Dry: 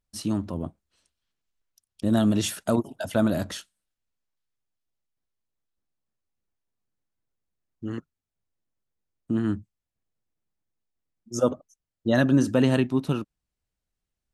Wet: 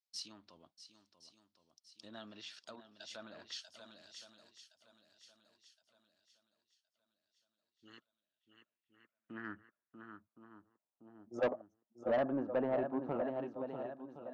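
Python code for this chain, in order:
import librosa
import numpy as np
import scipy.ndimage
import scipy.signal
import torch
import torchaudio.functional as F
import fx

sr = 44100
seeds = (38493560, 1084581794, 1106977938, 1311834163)

p1 = fx.high_shelf(x, sr, hz=5800.0, db=-10.5)
p2 = p1 + fx.echo_swing(p1, sr, ms=1067, ratio=1.5, feedback_pct=35, wet_db=-10, dry=0)
p3 = fx.env_lowpass_down(p2, sr, base_hz=2100.0, full_db=-20.5)
p4 = p3 * (1.0 - 0.3 / 2.0 + 0.3 / 2.0 * np.cos(2.0 * np.pi * 0.52 * (np.arange(len(p3)) / sr)))
p5 = fx.filter_sweep_bandpass(p4, sr, from_hz=4900.0, to_hz=720.0, start_s=7.59, end_s=11.26, q=2.7)
p6 = 10.0 ** (-29.5 / 20.0) * np.tanh(p5 / 10.0 ** (-29.5 / 20.0))
y = p6 * 10.0 ** (3.0 / 20.0)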